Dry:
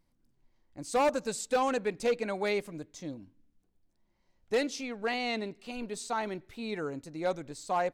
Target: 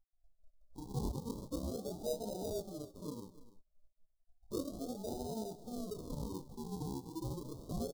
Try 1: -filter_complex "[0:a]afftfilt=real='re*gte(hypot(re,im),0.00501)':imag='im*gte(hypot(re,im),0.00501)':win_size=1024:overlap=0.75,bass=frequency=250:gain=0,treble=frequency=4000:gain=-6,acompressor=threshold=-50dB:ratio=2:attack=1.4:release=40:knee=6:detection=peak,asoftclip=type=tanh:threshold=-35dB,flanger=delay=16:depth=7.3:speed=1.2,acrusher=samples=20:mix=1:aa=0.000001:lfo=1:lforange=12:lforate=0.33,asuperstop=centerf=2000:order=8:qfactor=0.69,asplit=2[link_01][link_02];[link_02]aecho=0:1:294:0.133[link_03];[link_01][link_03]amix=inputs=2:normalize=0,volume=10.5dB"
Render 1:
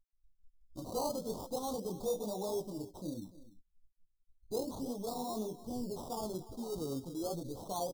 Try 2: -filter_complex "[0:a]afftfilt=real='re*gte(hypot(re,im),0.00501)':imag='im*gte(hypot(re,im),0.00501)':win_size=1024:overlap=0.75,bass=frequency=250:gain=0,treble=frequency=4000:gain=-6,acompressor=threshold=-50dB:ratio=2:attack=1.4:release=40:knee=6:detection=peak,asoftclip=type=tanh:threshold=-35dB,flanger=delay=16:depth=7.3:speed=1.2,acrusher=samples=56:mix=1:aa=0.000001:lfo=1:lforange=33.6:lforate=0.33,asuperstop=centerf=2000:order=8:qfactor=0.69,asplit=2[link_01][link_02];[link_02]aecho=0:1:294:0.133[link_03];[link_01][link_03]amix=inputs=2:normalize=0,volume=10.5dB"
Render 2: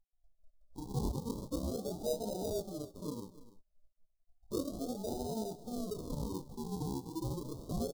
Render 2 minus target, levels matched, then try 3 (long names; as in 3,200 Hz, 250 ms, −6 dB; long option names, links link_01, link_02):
downward compressor: peak gain reduction −3.5 dB
-filter_complex "[0:a]afftfilt=real='re*gte(hypot(re,im),0.00501)':imag='im*gte(hypot(re,im),0.00501)':win_size=1024:overlap=0.75,bass=frequency=250:gain=0,treble=frequency=4000:gain=-6,acompressor=threshold=-57dB:ratio=2:attack=1.4:release=40:knee=6:detection=peak,asoftclip=type=tanh:threshold=-35dB,flanger=delay=16:depth=7.3:speed=1.2,acrusher=samples=56:mix=1:aa=0.000001:lfo=1:lforange=33.6:lforate=0.33,asuperstop=centerf=2000:order=8:qfactor=0.69,asplit=2[link_01][link_02];[link_02]aecho=0:1:294:0.133[link_03];[link_01][link_03]amix=inputs=2:normalize=0,volume=10.5dB"